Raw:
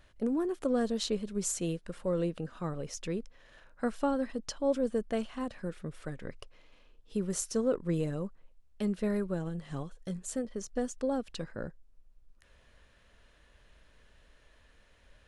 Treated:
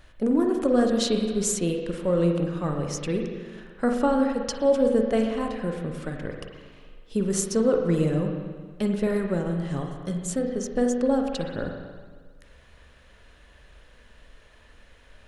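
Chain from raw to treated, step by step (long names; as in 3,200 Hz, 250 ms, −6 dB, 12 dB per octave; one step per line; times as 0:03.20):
spring reverb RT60 1.6 s, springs 41/45 ms, chirp 20 ms, DRR 2.5 dB
level +7 dB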